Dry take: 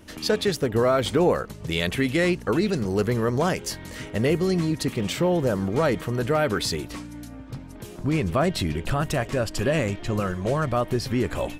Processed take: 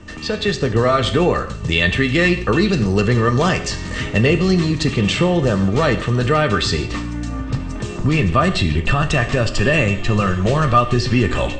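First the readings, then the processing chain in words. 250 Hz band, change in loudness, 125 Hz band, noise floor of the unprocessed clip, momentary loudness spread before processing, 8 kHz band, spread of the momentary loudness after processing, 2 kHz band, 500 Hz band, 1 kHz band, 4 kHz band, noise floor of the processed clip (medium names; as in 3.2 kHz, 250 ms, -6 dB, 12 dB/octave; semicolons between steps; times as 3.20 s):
+6.5 dB, +7.0 dB, +9.0 dB, -41 dBFS, 10 LU, +4.0 dB, 9 LU, +10.5 dB, +4.5 dB, +8.5 dB, +8.5 dB, -28 dBFS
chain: level rider gain up to 13 dB; small resonant body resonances 1.2/1.8/2.7 kHz, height 15 dB, ringing for 95 ms; dynamic bell 3.5 kHz, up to +6 dB, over -34 dBFS, Q 1.2; steep low-pass 8.4 kHz 96 dB/octave; bass shelf 110 Hz +11.5 dB; gated-style reverb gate 200 ms falling, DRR 7.5 dB; three bands compressed up and down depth 40%; trim -6.5 dB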